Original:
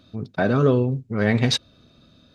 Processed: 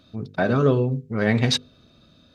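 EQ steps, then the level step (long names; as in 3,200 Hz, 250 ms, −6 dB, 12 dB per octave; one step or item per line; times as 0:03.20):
mains-hum notches 50/100/150/200/250/300/350/400/450/500 Hz
0.0 dB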